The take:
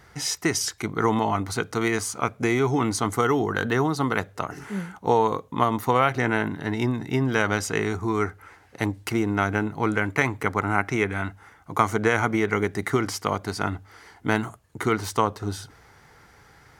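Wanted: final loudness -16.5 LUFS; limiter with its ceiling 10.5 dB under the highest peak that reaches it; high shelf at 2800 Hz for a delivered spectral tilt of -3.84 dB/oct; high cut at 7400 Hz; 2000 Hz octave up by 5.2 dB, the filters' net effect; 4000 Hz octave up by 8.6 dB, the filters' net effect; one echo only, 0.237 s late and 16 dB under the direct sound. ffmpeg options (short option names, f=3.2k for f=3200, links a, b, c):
-af "lowpass=7.4k,equalizer=f=2k:t=o:g=3.5,highshelf=f=2.8k:g=3.5,equalizer=f=4k:t=o:g=8,alimiter=limit=-11dB:level=0:latency=1,aecho=1:1:237:0.158,volume=8.5dB"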